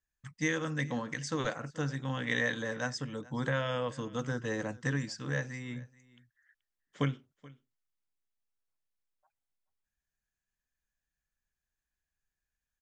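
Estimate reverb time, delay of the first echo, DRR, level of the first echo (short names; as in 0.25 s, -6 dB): none, 0.429 s, none, -22.0 dB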